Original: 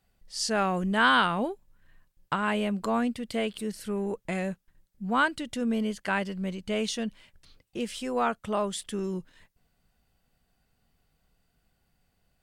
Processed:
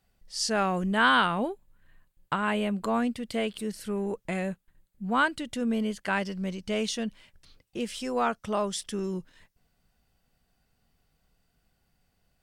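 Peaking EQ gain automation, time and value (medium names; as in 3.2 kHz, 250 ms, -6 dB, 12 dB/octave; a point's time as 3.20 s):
peaking EQ 5.5 kHz 0.32 oct
+2 dB
from 0.91 s -7.5 dB
from 2.95 s +0.5 dB
from 4.29 s -7.5 dB
from 5.11 s -1 dB
from 6.12 s +10.5 dB
from 6.83 s +1.5 dB
from 8.00 s +9.5 dB
from 8.92 s +3 dB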